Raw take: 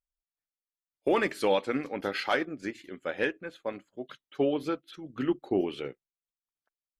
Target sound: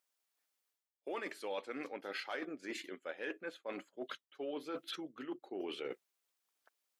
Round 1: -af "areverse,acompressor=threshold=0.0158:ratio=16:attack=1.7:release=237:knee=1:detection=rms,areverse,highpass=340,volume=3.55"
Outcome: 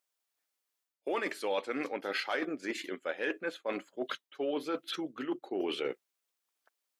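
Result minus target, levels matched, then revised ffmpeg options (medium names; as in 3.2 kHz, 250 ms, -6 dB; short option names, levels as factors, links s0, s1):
compression: peak gain reduction -8 dB
-af "areverse,acompressor=threshold=0.00596:ratio=16:attack=1.7:release=237:knee=1:detection=rms,areverse,highpass=340,volume=3.55"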